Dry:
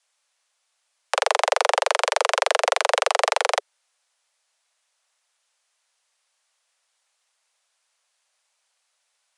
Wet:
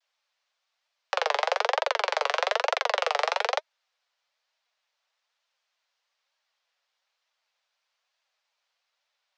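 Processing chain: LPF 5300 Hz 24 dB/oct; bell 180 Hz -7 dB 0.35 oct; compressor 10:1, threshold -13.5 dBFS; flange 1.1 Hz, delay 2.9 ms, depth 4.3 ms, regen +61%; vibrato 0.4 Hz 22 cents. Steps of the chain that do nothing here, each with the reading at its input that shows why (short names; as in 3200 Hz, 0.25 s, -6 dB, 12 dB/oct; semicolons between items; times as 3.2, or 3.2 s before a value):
bell 180 Hz: input band starts at 360 Hz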